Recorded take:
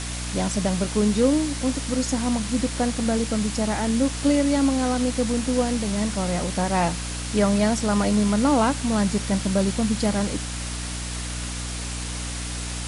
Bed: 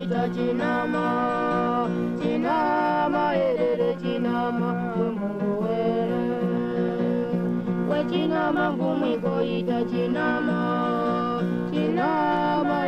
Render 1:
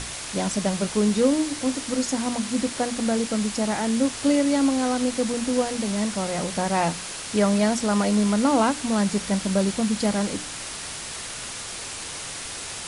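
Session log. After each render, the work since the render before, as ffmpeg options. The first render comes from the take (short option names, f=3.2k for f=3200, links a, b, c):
-af "bandreject=f=60:t=h:w=6,bandreject=f=120:t=h:w=6,bandreject=f=180:t=h:w=6,bandreject=f=240:t=h:w=6,bandreject=f=300:t=h:w=6"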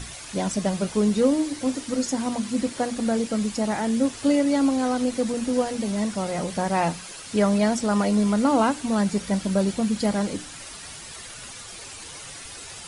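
-af "afftdn=nr=9:nf=-35"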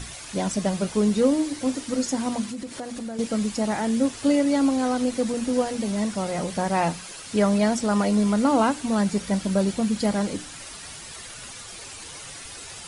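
-filter_complex "[0:a]asettb=1/sr,asplit=3[a][b][c];[a]atrim=end=2.454[d];[b]atrim=start=2.45:end=3.19,asetpts=PTS-STARTPTS,afade=t=in:d=0.004:c=qsin,afade=t=out:st=0.736:d=0.004:c=qsin,acompressor=threshold=-30dB:ratio=6:attack=3.2:release=140:knee=1:detection=peak[e];[c]atrim=start=3.186[f];[d][e]acrossfade=d=0.004:c1=hsin:c2=qsin[g];[g][f]acrossfade=d=0.004:c1=qsin:c2=hsin"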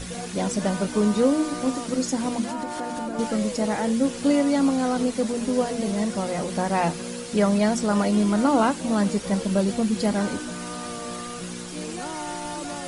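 -filter_complex "[1:a]volume=-10.5dB[a];[0:a][a]amix=inputs=2:normalize=0"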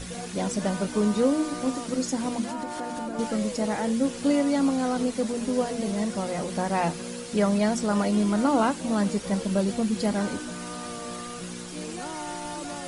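-af "volume=-2.5dB"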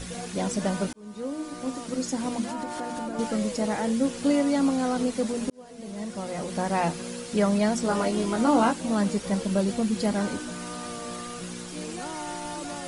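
-filter_complex "[0:a]asettb=1/sr,asplit=3[a][b][c];[a]atrim=end=7.834[d];[b]atrim=start=7.83:end=8.73,asetpts=PTS-STARTPTS,afade=t=in:d=0.004:c=qsin,afade=t=out:st=0.896:d=0.004:c=qsin,asplit=2[e][f];[f]adelay=17,volume=-5dB[g];[e][g]amix=inputs=2:normalize=0,atrim=end_sample=39690[h];[c]atrim=start=8.726[i];[d][h]acrossfade=d=0.004:c1=hsin:c2=qsin[j];[j][i]acrossfade=d=0.004:c1=qsin:c2=hsin,asplit=3[k][l][m];[k]atrim=end=0.93,asetpts=PTS-STARTPTS,afade=t=out:st=0.926:d=0.004:c=hsin[n];[l]atrim=start=0.93:end=5.5,asetpts=PTS-STARTPTS,afade=t=in:d=1.81:c=qsin,afade=t=out:st=4.566:d=0.004:c=hsin[o];[m]atrim=start=5.5,asetpts=PTS-STARTPTS,afade=t=in:d=1.17[p];[n][o][p]concat=n=3:v=0:a=1"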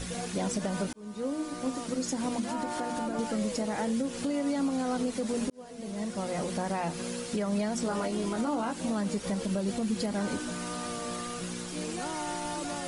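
-af "acompressor=threshold=-24dB:ratio=6,alimiter=limit=-21.5dB:level=0:latency=1:release=125"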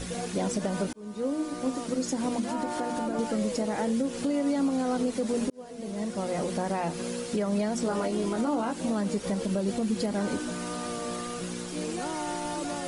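-af "equalizer=f=400:t=o:w=1.7:g=4"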